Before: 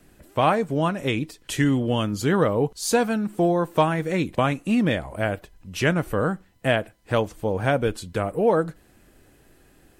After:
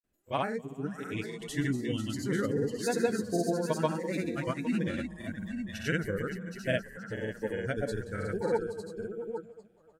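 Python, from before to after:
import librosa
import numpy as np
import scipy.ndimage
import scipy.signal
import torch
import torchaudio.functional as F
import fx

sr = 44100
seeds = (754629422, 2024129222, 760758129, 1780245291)

p1 = x + fx.echo_heads(x, sr, ms=261, heads='all three', feedback_pct=41, wet_db=-9.5, dry=0)
p2 = fx.noise_reduce_blind(p1, sr, reduce_db=18)
p3 = fx.granulator(p2, sr, seeds[0], grain_ms=100.0, per_s=20.0, spray_ms=100.0, spread_st=0)
y = p3 * librosa.db_to_amplitude(-8.0)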